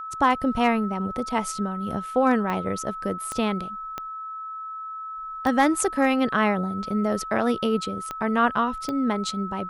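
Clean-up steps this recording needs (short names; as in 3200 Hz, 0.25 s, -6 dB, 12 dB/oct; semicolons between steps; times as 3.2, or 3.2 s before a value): clip repair -9 dBFS; de-click; notch 1300 Hz, Q 30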